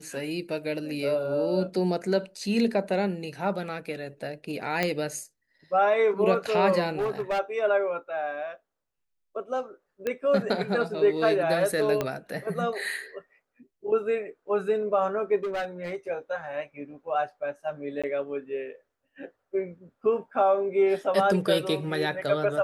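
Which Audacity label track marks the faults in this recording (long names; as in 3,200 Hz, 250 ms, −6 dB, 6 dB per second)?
4.830000	4.830000	click −11 dBFS
6.990000	7.400000	clipping −23.5 dBFS
10.070000	10.070000	click −16 dBFS
12.010000	12.010000	click −13 dBFS
15.360000	15.960000	clipping −26.5 dBFS
18.020000	18.040000	drop-out 16 ms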